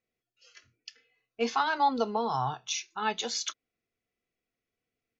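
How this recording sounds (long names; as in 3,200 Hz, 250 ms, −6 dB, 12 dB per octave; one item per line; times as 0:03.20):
background noise floor −89 dBFS
spectral slope −3.0 dB per octave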